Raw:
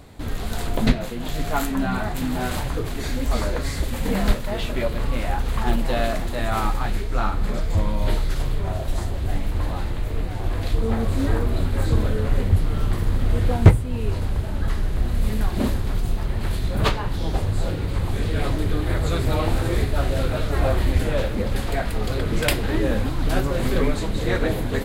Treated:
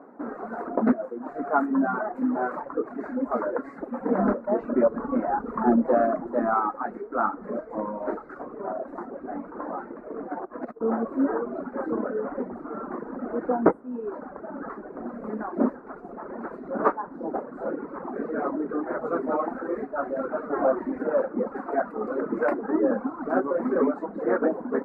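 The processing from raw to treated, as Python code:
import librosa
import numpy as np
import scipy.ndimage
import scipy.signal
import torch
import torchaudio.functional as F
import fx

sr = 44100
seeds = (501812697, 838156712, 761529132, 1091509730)

y = fx.low_shelf(x, sr, hz=290.0, db=11.5, at=(4.18, 6.54))
y = fx.over_compress(y, sr, threshold_db=-27.0, ratio=-1.0, at=(10.31, 10.81))
y = fx.peak_eq(y, sr, hz=340.0, db=-3.0, octaves=2.6, at=(19.36, 20.43))
y = scipy.signal.sosfilt(scipy.signal.ellip(3, 1.0, 40, [240.0, 1400.0], 'bandpass', fs=sr, output='sos'), y)
y = fx.dereverb_blind(y, sr, rt60_s=1.4)
y = F.gain(torch.from_numpy(y), 3.5).numpy()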